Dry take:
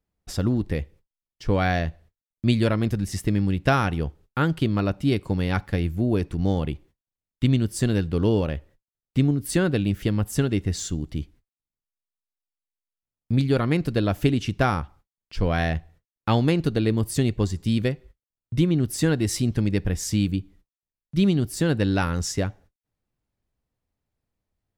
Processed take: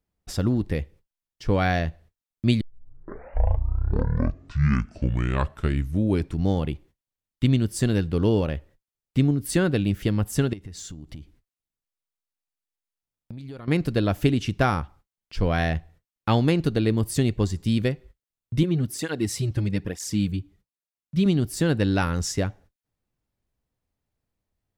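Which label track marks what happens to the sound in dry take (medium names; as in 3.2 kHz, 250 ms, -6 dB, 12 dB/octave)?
2.610000	2.610000	tape start 3.87 s
10.530000	13.680000	compression 12:1, threshold -34 dBFS
18.630000	21.260000	cancelling through-zero flanger nulls at 1.1 Hz, depth 5 ms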